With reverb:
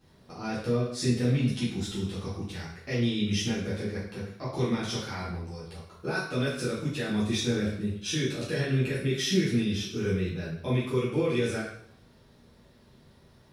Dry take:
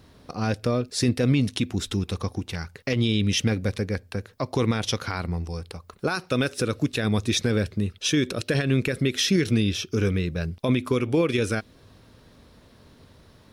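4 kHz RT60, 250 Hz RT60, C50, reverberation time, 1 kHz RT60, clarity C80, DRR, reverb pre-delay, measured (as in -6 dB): 0.60 s, 0.65 s, 2.5 dB, 0.65 s, 0.65 s, 6.5 dB, -10.5 dB, 5 ms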